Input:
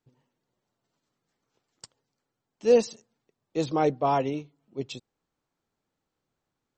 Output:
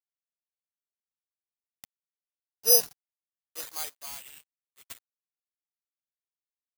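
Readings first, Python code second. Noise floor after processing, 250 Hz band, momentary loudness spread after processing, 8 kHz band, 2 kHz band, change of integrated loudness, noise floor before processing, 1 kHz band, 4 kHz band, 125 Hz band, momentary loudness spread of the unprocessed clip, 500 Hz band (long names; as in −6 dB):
below −85 dBFS, −26.0 dB, 21 LU, +17.0 dB, −6.0 dB, +2.5 dB, −84 dBFS, −18.5 dB, +9.5 dB, below −25 dB, 17 LU, −11.5 dB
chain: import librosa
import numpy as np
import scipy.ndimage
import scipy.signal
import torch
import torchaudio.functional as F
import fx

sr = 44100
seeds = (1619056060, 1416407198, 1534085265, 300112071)

y = np.sign(x) * np.maximum(np.abs(x) - 10.0 ** (-41.0 / 20.0), 0.0)
y = fx.filter_sweep_highpass(y, sr, from_hz=560.0, to_hz=2900.0, start_s=3.23, end_s=4.15, q=0.9)
y = (np.kron(y[::8], np.eye(8)[0]) * 8)[:len(y)]
y = F.gain(torch.from_numpy(y), -7.0).numpy()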